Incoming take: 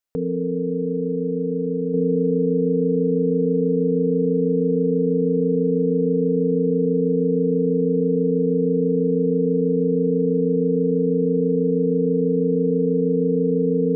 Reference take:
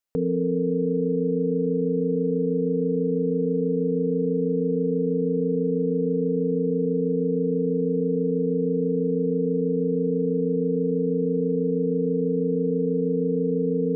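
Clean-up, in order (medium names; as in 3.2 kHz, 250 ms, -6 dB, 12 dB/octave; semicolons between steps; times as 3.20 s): trim 0 dB, from 1.94 s -4 dB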